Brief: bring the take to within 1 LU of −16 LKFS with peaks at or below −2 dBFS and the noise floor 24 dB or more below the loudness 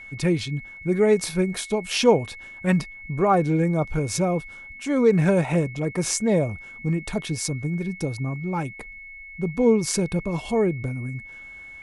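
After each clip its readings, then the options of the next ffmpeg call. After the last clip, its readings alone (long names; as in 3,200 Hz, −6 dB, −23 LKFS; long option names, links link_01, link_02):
interfering tone 2,200 Hz; level of the tone −39 dBFS; integrated loudness −23.5 LKFS; sample peak −6.0 dBFS; target loudness −16.0 LKFS
→ -af "bandreject=frequency=2200:width=30"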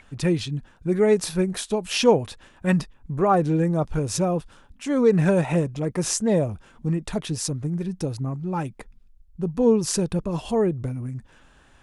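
interfering tone none found; integrated loudness −23.5 LKFS; sample peak −6.0 dBFS; target loudness −16.0 LKFS
→ -af "volume=7.5dB,alimiter=limit=-2dB:level=0:latency=1"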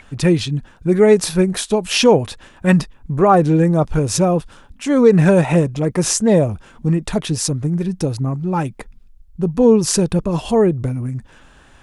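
integrated loudness −16.5 LKFS; sample peak −2.0 dBFS; background noise floor −47 dBFS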